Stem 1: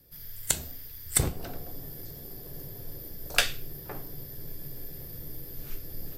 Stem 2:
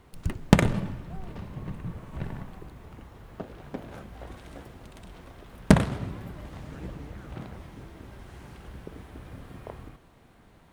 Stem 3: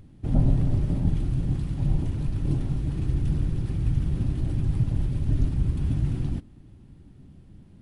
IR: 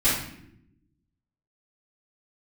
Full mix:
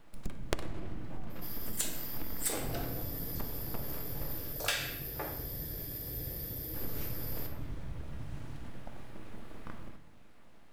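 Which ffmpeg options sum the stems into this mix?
-filter_complex "[0:a]highpass=f=310:w=0.5412,highpass=f=310:w=1.3066,asoftclip=type=tanh:threshold=-21.5dB,adelay=1300,volume=0dB,asplit=2[a][b];[b]volume=-15.5dB[c];[1:a]aeval=exprs='abs(val(0))':c=same,volume=-4dB,asplit=3[d][e][f];[d]atrim=end=4.53,asetpts=PTS-STARTPTS,afade=t=out:st=4.526:d=0.004:c=hsin[g];[e]atrim=start=4.53:end=6.74,asetpts=PTS-STARTPTS,volume=0[h];[f]atrim=start=6.74,asetpts=PTS-STARTPTS,afade=t=in:d=0.004:c=hsin[i];[g][h][i]concat=n=3:v=0:a=1,asplit=2[j][k];[k]volume=-21.5dB[l];[2:a]adelay=2300,volume=-19dB[m];[3:a]atrim=start_sample=2205[n];[c][l]amix=inputs=2:normalize=0[o];[o][n]afir=irnorm=-1:irlink=0[p];[a][j][m][p]amix=inputs=4:normalize=0,acompressor=threshold=-29dB:ratio=6"

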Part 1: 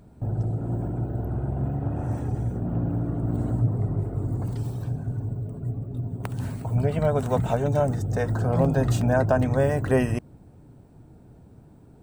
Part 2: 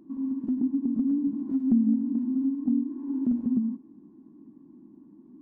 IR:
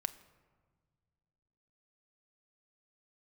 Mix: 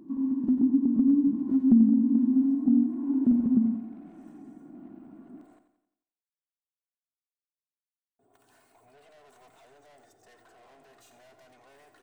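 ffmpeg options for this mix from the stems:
-filter_complex "[0:a]highpass=660,aecho=1:1:2.8:0.51,aeval=exprs='(tanh(89.1*val(0)+0.15)-tanh(0.15))/89.1':c=same,adelay=2100,volume=-16.5dB,asplit=3[a][b][c];[a]atrim=end=5.59,asetpts=PTS-STARTPTS,afade=t=out:st=5.586:d=0.004:c=hsin[d];[b]atrim=start=5.59:end=8.19,asetpts=PTS-STARTPTS,volume=0[e];[c]atrim=start=8.19,asetpts=PTS-STARTPTS,afade=t=in:d=0.004:c=hsin[f];[d][e][f]concat=n=3:v=0:a=1,asplit=2[g][h];[h]volume=-10.5dB[i];[1:a]volume=3dB,asplit=2[j][k];[k]volume=-10dB[l];[i][l]amix=inputs=2:normalize=0,aecho=0:1:88|176|264|352|440|528|616:1|0.48|0.23|0.111|0.0531|0.0255|0.0122[m];[g][j][m]amix=inputs=3:normalize=0"

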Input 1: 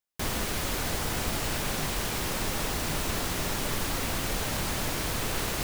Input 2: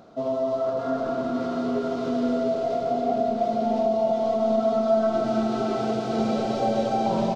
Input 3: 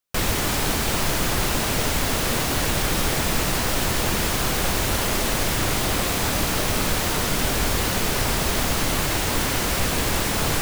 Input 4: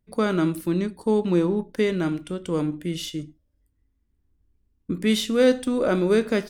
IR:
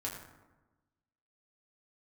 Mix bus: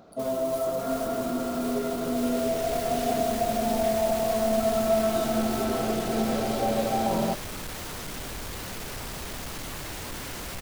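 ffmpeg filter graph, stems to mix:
-filter_complex "[0:a]volume=-12.5dB[a];[1:a]volume=-2.5dB[b];[2:a]asoftclip=type=tanh:threshold=-21.5dB,adelay=750,volume=-10dB,afade=t=in:st=2.01:d=0.73:silence=0.316228[c];[3:a]acompressor=threshold=-23dB:ratio=6,volume=-10.5dB[d];[a][d]amix=inputs=2:normalize=0,highshelf=f=4.5k:g=12,alimiter=level_in=8dB:limit=-24dB:level=0:latency=1,volume=-8dB,volume=0dB[e];[b][c][e]amix=inputs=3:normalize=0"

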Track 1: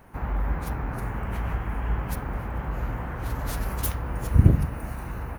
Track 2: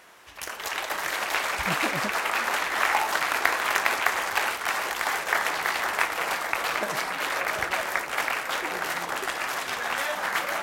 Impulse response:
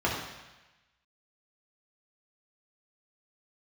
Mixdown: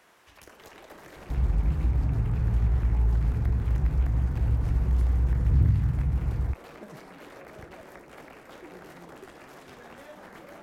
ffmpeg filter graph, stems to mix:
-filter_complex "[0:a]acrossover=split=8600[a][b];[b]acompressor=threshold=-58dB:ratio=4:attack=1:release=60[c];[a][c]amix=inputs=2:normalize=0,adelay=1150,volume=-3dB,asplit=2[d][e];[e]volume=-12.5dB[f];[1:a]volume=-8.5dB[g];[2:a]atrim=start_sample=2205[h];[f][h]afir=irnorm=-1:irlink=0[i];[d][g][i]amix=inputs=3:normalize=0,lowshelf=f=450:g=6.5,acrossover=split=210|490[j][k][l];[j]acompressor=threshold=-20dB:ratio=4[m];[k]acompressor=threshold=-45dB:ratio=4[n];[l]acompressor=threshold=-52dB:ratio=4[o];[m][n][o]amix=inputs=3:normalize=0"

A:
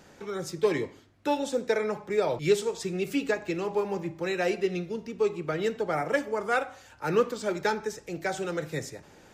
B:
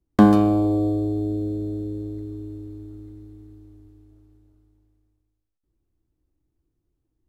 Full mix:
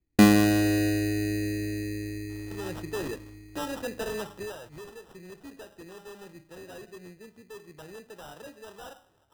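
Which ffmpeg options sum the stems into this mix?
-filter_complex "[0:a]asoftclip=type=hard:threshold=-26dB,adelay=2300,volume=-3dB,afade=t=out:st=4.33:d=0.25:silence=0.266073[a];[1:a]lowpass=1.1k,volume=-3.5dB[b];[a][b]amix=inputs=2:normalize=0,acrusher=samples=20:mix=1:aa=0.000001"

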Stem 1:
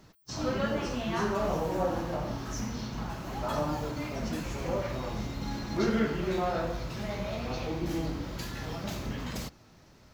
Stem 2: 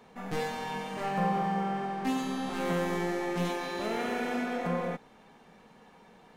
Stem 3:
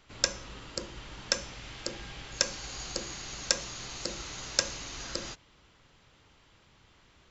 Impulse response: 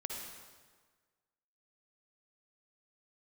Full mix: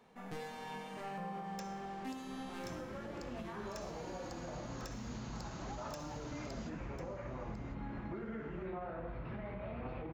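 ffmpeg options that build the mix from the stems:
-filter_complex "[0:a]lowpass=f=2.3k:w=0.5412,lowpass=f=2.3k:w=1.3066,acompressor=threshold=-33dB:ratio=5,adelay=2350,volume=-4dB[a];[1:a]volume=-8.5dB,afade=t=out:st=2.56:d=0.35:silence=0.316228[b];[2:a]asoftclip=type=tanh:threshold=-19dB,adelay=1350,volume=-16.5dB,asplit=3[c][d][e];[d]volume=-7dB[f];[e]volume=-14dB[g];[a][c]amix=inputs=2:normalize=0,alimiter=level_in=9.5dB:limit=-24dB:level=0:latency=1:release=56,volume=-9.5dB,volume=0dB[h];[3:a]atrim=start_sample=2205[i];[f][i]afir=irnorm=-1:irlink=0[j];[g]aecho=0:1:1048:1[k];[b][h][j][k]amix=inputs=4:normalize=0,alimiter=level_in=10.5dB:limit=-24dB:level=0:latency=1:release=403,volume=-10.5dB"

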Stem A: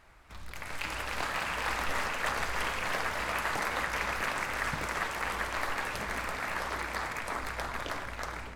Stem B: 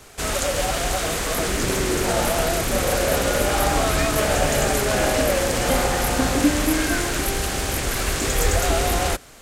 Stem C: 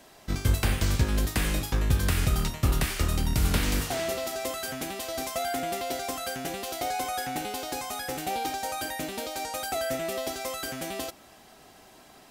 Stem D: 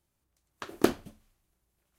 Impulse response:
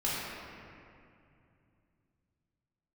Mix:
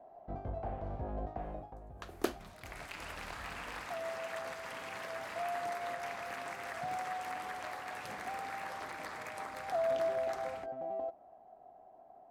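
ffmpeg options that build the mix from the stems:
-filter_complex "[0:a]acompressor=threshold=-34dB:ratio=6,highpass=f=91:w=0.5412,highpass=f=91:w=1.3066,adelay=2100,volume=-6.5dB[a];[2:a]lowshelf=f=490:g=-6.5,alimiter=limit=-23dB:level=0:latency=1:release=28,lowpass=f=710:t=q:w=7.1,volume=1.5dB,afade=t=out:st=1.38:d=0.41:silence=0.237137,afade=t=in:st=9.53:d=0.39:silence=0.354813[b];[3:a]highpass=330,adelay=1400,volume=-7.5dB[c];[a][b][c]amix=inputs=3:normalize=0"

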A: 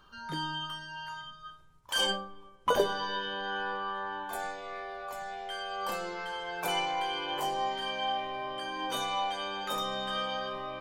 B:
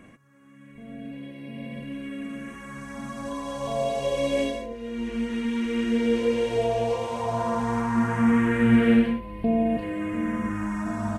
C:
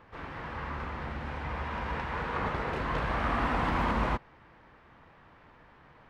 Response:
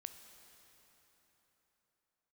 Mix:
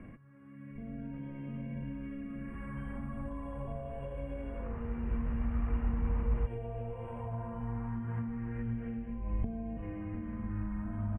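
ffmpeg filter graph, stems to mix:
-filter_complex "[0:a]lowpass=f=1.9k:p=1,acompressor=threshold=-37dB:ratio=6,adelay=850,volume=-15dB[a];[1:a]acompressor=threshold=-31dB:ratio=6,volume=-4dB[b];[2:a]adelay=2300,volume=-10.5dB,afade=t=in:st=4.35:d=0.71:silence=0.266073[c];[a][b][c]amix=inputs=3:normalize=0,aemphasis=mode=reproduction:type=bsi,acrossover=split=140[d][e];[e]acompressor=threshold=-43dB:ratio=3[f];[d][f]amix=inputs=2:normalize=0,asuperstop=centerf=5000:order=8:qfactor=0.85"

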